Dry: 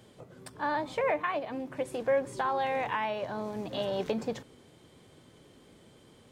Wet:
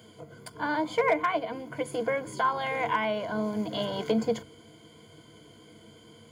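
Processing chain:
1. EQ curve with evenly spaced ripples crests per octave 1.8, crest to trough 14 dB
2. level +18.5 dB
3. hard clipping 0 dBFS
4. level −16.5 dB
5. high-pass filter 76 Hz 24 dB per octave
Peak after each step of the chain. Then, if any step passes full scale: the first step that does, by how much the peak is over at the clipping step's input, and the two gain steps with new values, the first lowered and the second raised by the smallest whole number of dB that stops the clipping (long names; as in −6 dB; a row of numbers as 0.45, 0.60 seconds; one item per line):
−15.0, +3.5, 0.0, −16.5, −14.0 dBFS
step 2, 3.5 dB
step 2 +14.5 dB, step 4 −12.5 dB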